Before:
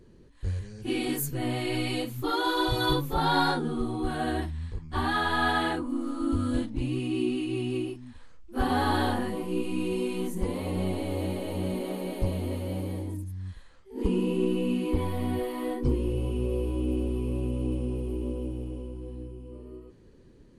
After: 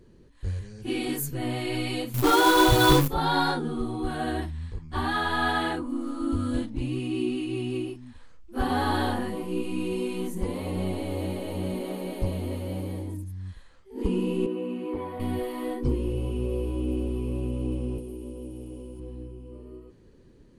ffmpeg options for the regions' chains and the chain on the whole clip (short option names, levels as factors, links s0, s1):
-filter_complex "[0:a]asettb=1/sr,asplit=3[s0][s1][s2];[s0]atrim=end=2.144[s3];[s1]atrim=start=2.14:end=3.08,asetpts=PTS-STARTPTS,afade=t=in:d=0.004:c=qsin,afade=t=out:st=0.936:d=0.004:c=qsin,equalizer=f=5000:w=2:g=-8,acrusher=bits=2:mode=log:mix=0:aa=0.000001,aeval=exprs='0.299*sin(PI/2*1.78*val(0)/0.299)':c=same[s4];[s2]atrim=start=3.076[s5];[s3][s4]acrossfade=d=0.004:c1=hsin:c2=qsin[s6];[s6][s5]acrossfade=d=0.004:c1=qsin:c2=hsin,asettb=1/sr,asplit=3[s7][s8][s9];[s7]atrim=end=14.464[s10];[s8]atrim=start=14.46:end=15.2,asetpts=PTS-STARTPTS,afade=t=in:d=0.004:c=qsin,afade=t=out:st=0.736:d=0.004:c=qsin,highpass=44,acrossover=split=270 2100:gain=0.2 1 0.2[s11][s12][s13];[s11][s12][s13]amix=inputs=3:normalize=0[s14];[s9]atrim=start=15.196[s15];[s10][s14]acrossfade=d=0.004:c1=hsin:c2=qsin[s16];[s16][s15]acrossfade=d=0.004:c1=qsin:c2=hsin,asettb=1/sr,asplit=3[s17][s18][s19];[s17]atrim=end=17.984[s20];[s18]atrim=start=17.98:end=19,asetpts=PTS-STARTPTS,afade=t=in:d=0.004:c=qsin,afade=t=out:st=1.016:d=0.004:c=qsin,aemphasis=mode=production:type=75kf,acrossover=split=160|700[s21][s22][s23];[s21]acompressor=threshold=0.00708:ratio=4[s24];[s22]acompressor=threshold=0.0141:ratio=4[s25];[s23]acompressor=threshold=0.00126:ratio=4[s26];[s24][s25][s26]amix=inputs=3:normalize=0[s27];[s19]atrim=start=18.996[s28];[s20][s27]acrossfade=d=0.004:c1=hsin:c2=qsin[s29];[s29][s28]acrossfade=d=0.004:c1=qsin:c2=hsin"